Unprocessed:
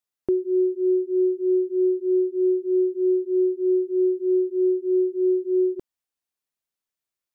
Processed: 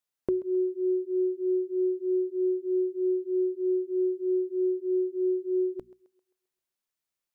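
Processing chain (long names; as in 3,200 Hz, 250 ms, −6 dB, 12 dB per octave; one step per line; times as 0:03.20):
mains-hum notches 60/120/180/240 Hz
dynamic equaliser 270 Hz, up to −7 dB, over −34 dBFS, Q 0.79
on a send: feedback echo with a high-pass in the loop 132 ms, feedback 51%, high-pass 340 Hz, level −17 dB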